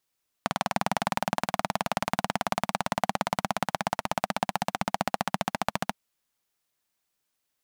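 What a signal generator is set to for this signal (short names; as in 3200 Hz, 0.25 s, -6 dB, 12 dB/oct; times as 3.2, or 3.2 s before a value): single-cylinder engine model, changing speed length 5.49 s, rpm 2400, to 1700, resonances 200/740 Hz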